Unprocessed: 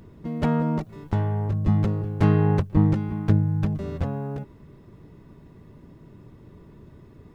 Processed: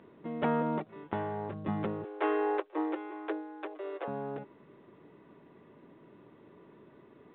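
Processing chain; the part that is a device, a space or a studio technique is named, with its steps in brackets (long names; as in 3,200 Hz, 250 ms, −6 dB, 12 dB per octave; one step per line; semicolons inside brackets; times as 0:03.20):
0:02.04–0:04.08: Butterworth high-pass 310 Hz 96 dB per octave
telephone (band-pass filter 320–3,100 Hz; level −1.5 dB; mu-law 64 kbit/s 8,000 Hz)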